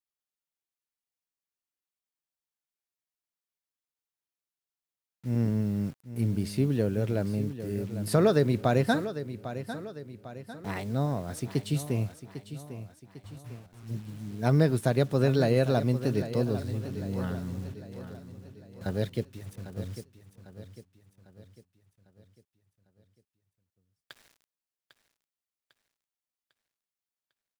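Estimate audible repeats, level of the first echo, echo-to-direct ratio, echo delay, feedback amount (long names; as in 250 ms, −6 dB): 4, −12.0 dB, −11.0 dB, 800 ms, 47%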